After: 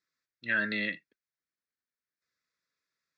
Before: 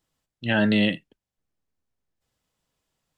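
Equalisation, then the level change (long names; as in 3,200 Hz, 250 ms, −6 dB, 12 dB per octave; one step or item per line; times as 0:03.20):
resonant band-pass 2,100 Hz, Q 0.63
phaser with its sweep stopped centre 3,000 Hz, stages 6
0.0 dB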